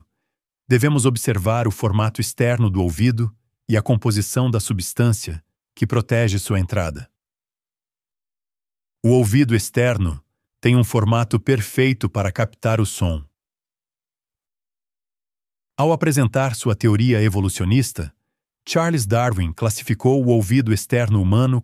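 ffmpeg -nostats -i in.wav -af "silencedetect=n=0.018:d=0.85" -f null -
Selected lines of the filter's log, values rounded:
silence_start: 7.04
silence_end: 9.04 | silence_duration: 2.00
silence_start: 13.23
silence_end: 15.78 | silence_duration: 2.55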